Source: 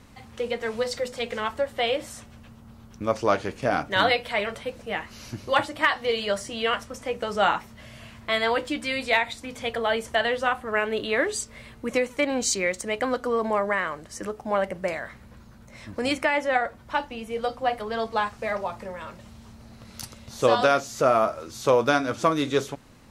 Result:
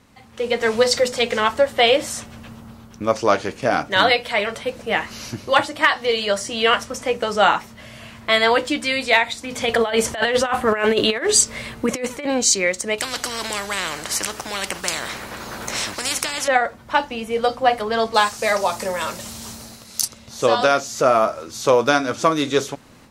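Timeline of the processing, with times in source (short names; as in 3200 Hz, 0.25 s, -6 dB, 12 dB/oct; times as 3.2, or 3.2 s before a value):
9.51–12.26 negative-ratio compressor -28 dBFS, ratio -0.5
12.98–16.48 spectral compressor 4:1
18.14–20.08 tone controls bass -4 dB, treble +14 dB
whole clip: dynamic EQ 6000 Hz, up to +4 dB, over -46 dBFS, Q 0.94; AGC gain up to 16 dB; low shelf 95 Hz -8.5 dB; gain -1.5 dB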